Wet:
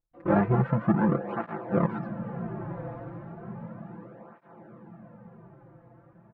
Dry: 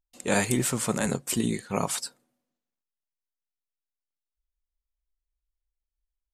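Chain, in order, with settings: half-waves squared off; LPF 1400 Hz 24 dB/oct; comb 5.9 ms, depth 70%; on a send: diffused feedback echo 1.006 s, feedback 53%, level -11 dB; on the sum: tape flanging out of phase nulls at 0.34 Hz, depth 5.3 ms

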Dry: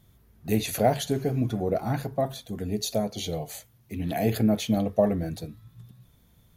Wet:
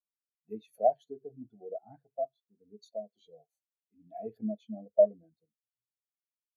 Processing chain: HPF 500 Hz 6 dB/oct; spectral expander 2.5:1

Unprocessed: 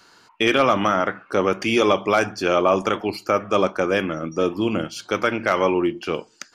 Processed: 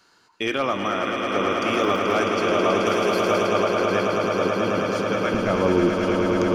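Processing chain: 5.34–5.89 tilt -4.5 dB/oct; on a send: swelling echo 0.108 s, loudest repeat 8, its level -7 dB; 1.68–2.17 on the sum: crackle 95/s -25 dBFS; 2.86–3.47 high shelf 8500 Hz +10 dB; gain -6.5 dB

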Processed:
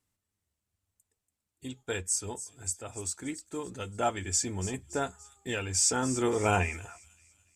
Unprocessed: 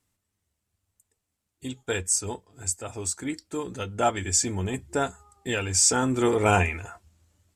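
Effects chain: thin delay 0.286 s, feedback 47%, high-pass 5400 Hz, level -11 dB; gain -5.5 dB

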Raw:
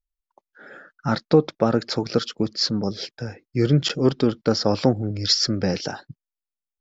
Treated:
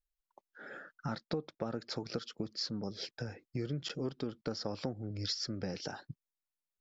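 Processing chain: compressor 4:1, threshold -32 dBFS, peak gain reduction 18 dB; gain -4.5 dB

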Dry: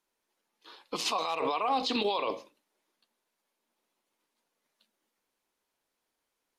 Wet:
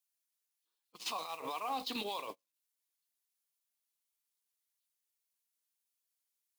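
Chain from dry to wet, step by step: switching spikes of -35.5 dBFS; dynamic EQ 410 Hz, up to -5 dB, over -46 dBFS, Q 1.1; gate -32 dBFS, range -36 dB; gain -7.5 dB

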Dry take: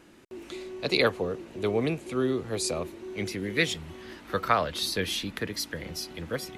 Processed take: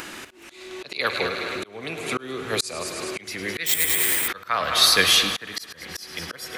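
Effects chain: on a send: multi-head echo 0.105 s, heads first and second, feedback 47%, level -16 dB; on the sum: spring tank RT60 3.9 s, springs 53 ms, chirp 55 ms, DRR 11 dB; in parallel at -1 dB: upward compressor, threshold -29 dBFS; on the sum: bell 1400 Hz +2.5 dB 1.6 oct; 1.26–2.12 compressor 2.5:1, threshold -26 dBFS, peak gain reduction 7.5 dB; tilt shelf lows -7 dB, about 780 Hz; notches 50/100 Hz; auto swell 0.418 s; 3.66–4.28 careless resampling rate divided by 4×, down none, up zero stuff; gain +2 dB

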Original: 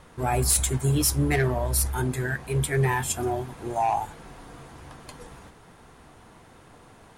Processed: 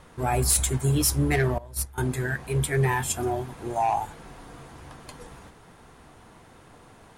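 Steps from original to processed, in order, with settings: 1.58–1.98 gate -21 dBFS, range -17 dB

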